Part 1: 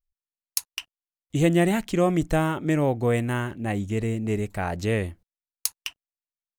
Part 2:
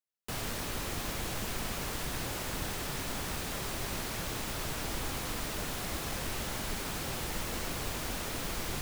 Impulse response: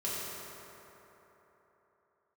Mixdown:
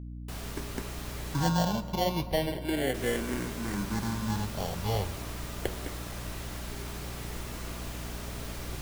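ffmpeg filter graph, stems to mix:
-filter_complex "[0:a]acrusher=samples=35:mix=1:aa=0.000001,asplit=2[a][b];[b]afreqshift=-0.35[c];[a][c]amix=inputs=2:normalize=1,volume=-0.5dB,asplit=2[d][e];[e]volume=-18.5dB[f];[1:a]volume=-3.5dB,asplit=3[g][h][i];[g]atrim=end=1.49,asetpts=PTS-STARTPTS,afade=t=out:st=1.486:d=0.004:c=hsin[j];[h]atrim=start=1.49:end=2.94,asetpts=PTS-STARTPTS,volume=0[k];[i]atrim=start=2.94,asetpts=PTS-STARTPTS,afade=t=in:d=0.004:c=hsin[l];[j][k][l]concat=n=3:v=0:a=1,asplit=2[m][n];[n]volume=-8dB[o];[2:a]atrim=start_sample=2205[p];[f][o]amix=inputs=2:normalize=0[q];[q][p]afir=irnorm=-1:irlink=0[r];[d][m][r]amix=inputs=3:normalize=0,flanger=delay=2:depth=7.1:regen=-78:speed=0.79:shape=sinusoidal,aeval=exprs='val(0)+0.0112*(sin(2*PI*60*n/s)+sin(2*PI*2*60*n/s)/2+sin(2*PI*3*60*n/s)/3+sin(2*PI*4*60*n/s)/4+sin(2*PI*5*60*n/s)/5)':c=same"

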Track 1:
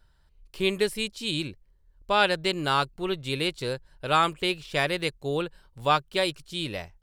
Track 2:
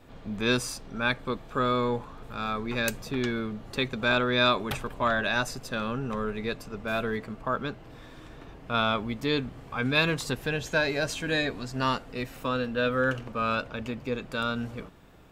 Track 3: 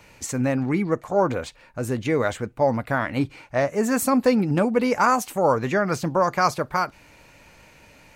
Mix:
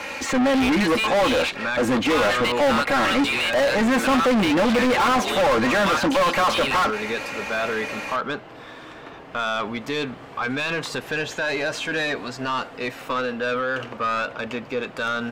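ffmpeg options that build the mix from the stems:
-filter_complex "[0:a]highpass=1.5k,acompressor=threshold=-32dB:ratio=6,volume=-0.5dB[a];[1:a]alimiter=limit=-21dB:level=0:latency=1,adelay=650,volume=-17.5dB[b];[2:a]aecho=1:1:3.7:0.88,volume=-9dB[c];[a][b][c]amix=inputs=3:normalize=0,acrossover=split=3700[d][e];[e]acompressor=threshold=-53dB:ratio=4:attack=1:release=60[f];[d][f]amix=inputs=2:normalize=0,asplit=2[g][h];[h]highpass=f=720:p=1,volume=37dB,asoftclip=type=tanh:threshold=-12dB[i];[g][i]amix=inputs=2:normalize=0,lowpass=f=2.6k:p=1,volume=-6dB"

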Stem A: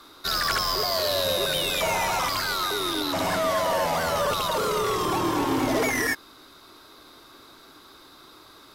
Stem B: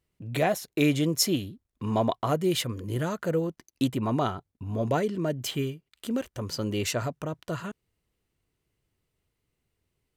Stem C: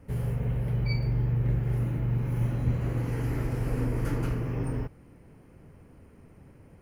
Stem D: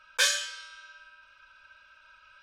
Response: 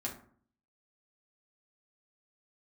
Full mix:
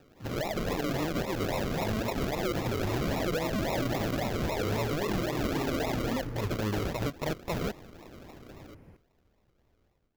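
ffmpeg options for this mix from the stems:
-filter_complex "[0:a]volume=-9dB[a];[1:a]equalizer=f=200:w=0.53:g=-10.5,volume=2.5dB,asplit=2[b][c];[2:a]adelay=2150,volume=-10.5dB[d];[3:a]aderivative,adelay=2150,volume=-4dB[e];[c]apad=whole_len=395312[f];[d][f]sidechaincompress=threshold=-37dB:ratio=8:attack=16:release=1490[g];[a][b][e]amix=inputs=3:normalize=0,acrusher=samples=40:mix=1:aa=0.000001:lfo=1:lforange=24:lforate=3.7,acompressor=threshold=-31dB:ratio=16,volume=0dB[h];[g][h]amix=inputs=2:normalize=0,dynaudnorm=f=340:g=3:m=10dB,equalizer=f=9.1k:w=2.9:g=-10.5,alimiter=limit=-23dB:level=0:latency=1:release=58"

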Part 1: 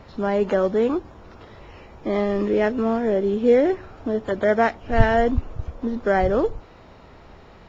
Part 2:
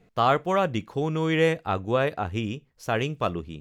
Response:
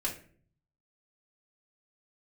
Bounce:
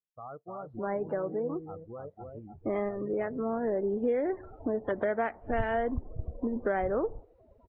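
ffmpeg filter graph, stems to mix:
-filter_complex "[0:a]bass=f=250:g=-5,treble=f=4k:g=-8,adelay=600,volume=0.5dB[a];[1:a]lowpass=f=1.5k:w=0.5412,lowpass=f=1.5k:w=1.3066,alimiter=limit=-16dB:level=0:latency=1:release=19,volume=-17dB,asplit=3[b][c][d];[c]volume=-3dB[e];[d]apad=whole_len=365231[f];[a][f]sidechaincompress=threshold=-48dB:ratio=8:attack=30:release=707[g];[e]aecho=0:1:300:1[h];[g][b][h]amix=inputs=3:normalize=0,afftdn=nr=33:nf=-37,acompressor=threshold=-28dB:ratio=4"

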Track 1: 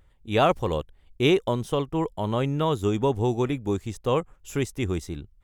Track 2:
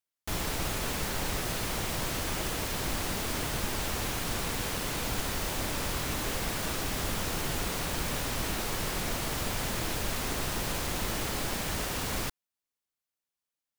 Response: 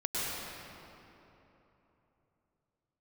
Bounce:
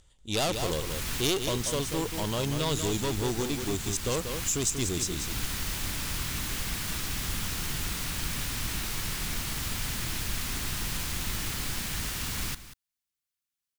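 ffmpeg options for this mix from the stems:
-filter_complex "[0:a]lowpass=f=7.2k:t=q:w=1.9,aeval=exprs='(tanh(15.8*val(0)+0.4)-tanh(0.4))/15.8':c=same,aexciter=amount=3.6:drive=5.7:freq=2.9k,volume=-2dB,asplit=3[a][b][c];[b]volume=-7dB[d];[1:a]equalizer=f=560:w=0.75:g=-13.5,adelay=250,volume=1.5dB,asplit=2[e][f];[f]volume=-14.5dB[g];[c]apad=whole_len=619045[h];[e][h]sidechaincompress=threshold=-32dB:ratio=8:attack=22:release=519[i];[d][g]amix=inputs=2:normalize=0,aecho=0:1:188:1[j];[a][i][j]amix=inputs=3:normalize=0"

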